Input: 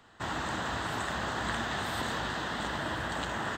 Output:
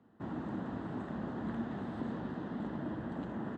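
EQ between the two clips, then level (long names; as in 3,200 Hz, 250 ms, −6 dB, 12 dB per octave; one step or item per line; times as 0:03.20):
resonant band-pass 230 Hz, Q 1.7
+4.0 dB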